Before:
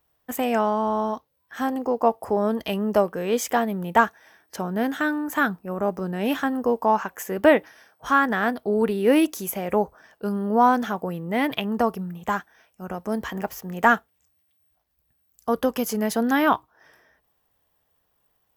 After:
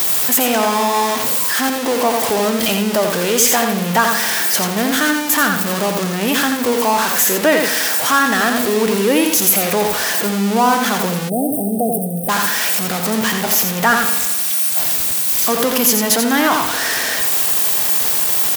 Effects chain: jump at every zero crossing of -21.5 dBFS; on a send: feedback delay 86 ms, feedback 16%, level -6 dB; on the sum: spring tank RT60 1.4 s, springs 45 ms, chirp 50 ms, DRR 12 dB; spectral selection erased 11.29–12.29 s, 810–8100 Hz; in parallel at -3 dB: peak limiter -12.5 dBFS, peak gain reduction 10.5 dB; on the sum: short-mantissa float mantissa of 6-bit; high-pass 130 Hz 12 dB/octave; treble shelf 2.3 kHz +10.5 dB; trim -3 dB

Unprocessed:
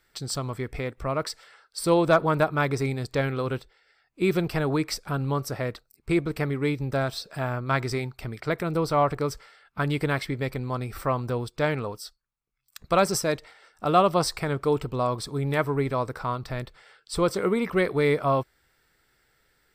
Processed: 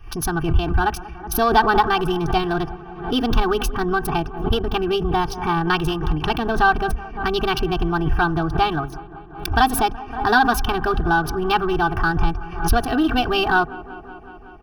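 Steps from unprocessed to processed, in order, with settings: local Wiener filter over 15 samples; bass shelf 130 Hz +11 dB; hum notches 50/100/150/200 Hz; comb 3.5 ms, depth 87%; in parallel at +1 dB: compression, threshold -26 dBFS, peak gain reduction 14 dB; on the sum: saturation -5 dBFS, distortion -25 dB; static phaser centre 1.5 kHz, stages 6; feedback echo behind a low-pass 251 ms, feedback 76%, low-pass 1.1 kHz, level -17.5 dB; speed mistake 33 rpm record played at 45 rpm; swell ahead of each attack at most 95 dB/s; trim +5 dB

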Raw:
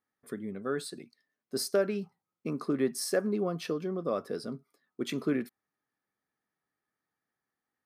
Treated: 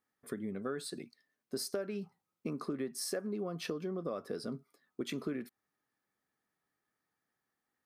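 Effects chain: compression 6:1, threshold -36 dBFS, peak gain reduction 13 dB; trim +1.5 dB

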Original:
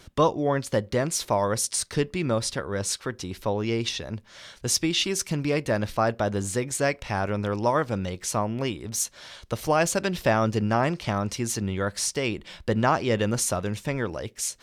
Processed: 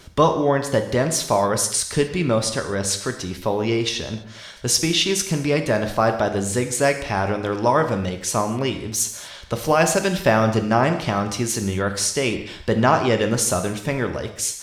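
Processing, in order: gated-style reverb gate 280 ms falling, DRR 6 dB; trim +4.5 dB

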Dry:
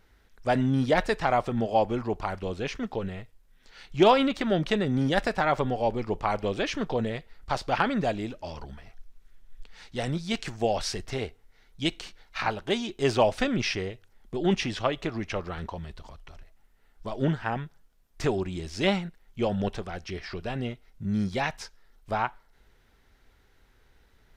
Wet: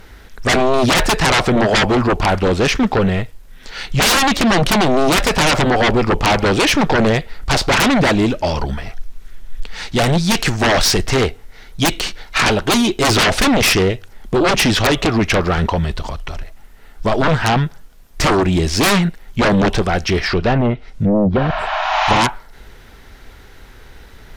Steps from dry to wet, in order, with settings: 20.23–22.16 s: low-pass that closes with the level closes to 440 Hz, closed at -23.5 dBFS; sine folder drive 18 dB, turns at -9 dBFS; 21.40–22.15 s: spectral replace 600–7200 Hz both; trim -1 dB

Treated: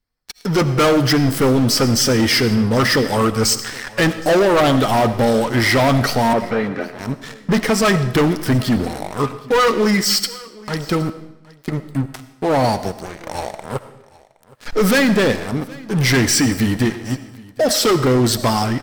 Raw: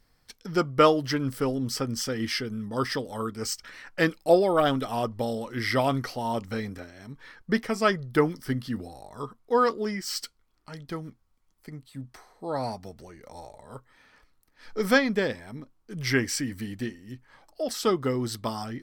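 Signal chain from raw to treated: coarse spectral quantiser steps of 15 dB; waveshaping leveller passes 5; level rider gain up to 5 dB; peak limiter -7 dBFS, peak gain reduction 3 dB; 6.33–6.99 s: band-pass 240–2200 Hz; delay 768 ms -23 dB; algorithmic reverb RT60 0.85 s, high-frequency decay 0.95×, pre-delay 40 ms, DRR 12.5 dB; trim -4 dB

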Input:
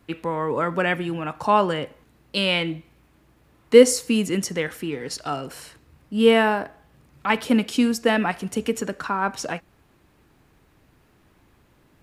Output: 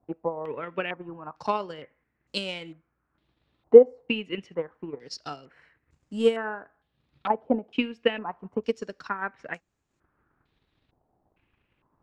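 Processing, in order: dynamic bell 430 Hz, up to +5 dB, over -33 dBFS, Q 2.1; transient shaper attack +10 dB, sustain -6 dB; step-sequenced low-pass 2.2 Hz 750–7100 Hz; trim -15.5 dB

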